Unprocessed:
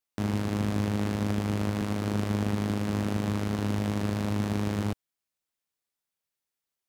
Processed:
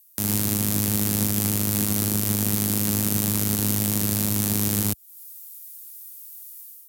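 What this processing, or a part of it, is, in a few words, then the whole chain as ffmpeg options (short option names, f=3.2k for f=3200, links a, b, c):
FM broadcast chain: -filter_complex "[0:a]highpass=72,dynaudnorm=f=140:g=5:m=14dB,acrossover=split=310|6100[a][b][c];[a]acompressor=threshold=-24dB:ratio=4[d];[b]acompressor=threshold=-37dB:ratio=4[e];[c]acompressor=threshold=-52dB:ratio=4[f];[d][e][f]amix=inputs=3:normalize=0,aemphasis=mode=production:type=75fm,alimiter=limit=-14dB:level=0:latency=1:release=150,asoftclip=type=hard:threshold=-17.5dB,lowpass=f=15k:w=0.5412,lowpass=f=15k:w=1.3066,aemphasis=mode=production:type=75fm,volume=2.5dB"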